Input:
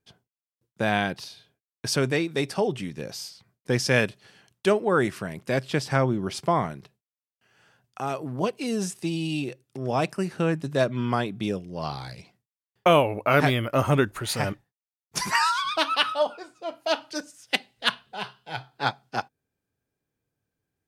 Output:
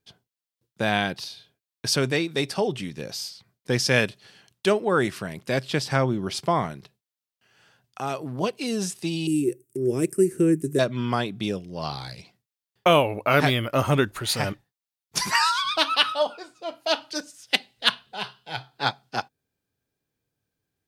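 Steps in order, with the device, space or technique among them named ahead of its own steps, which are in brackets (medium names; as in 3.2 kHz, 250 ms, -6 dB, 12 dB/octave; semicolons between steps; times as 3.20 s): 9.27–10.79 s: FFT filter 240 Hz 0 dB, 370 Hz +13 dB, 730 Hz -22 dB, 2 kHz -6 dB, 4 kHz -20 dB, 8.3 kHz +11 dB; presence and air boost (peaking EQ 4 kHz +5 dB 1.1 oct; treble shelf 11 kHz +4.5 dB)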